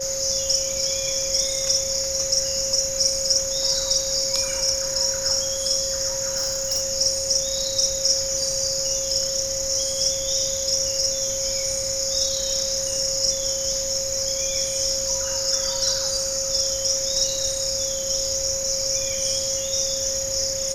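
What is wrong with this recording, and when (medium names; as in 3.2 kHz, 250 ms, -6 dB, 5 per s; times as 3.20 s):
whine 540 Hz -29 dBFS
6.36–6.83 s: clipped -19.5 dBFS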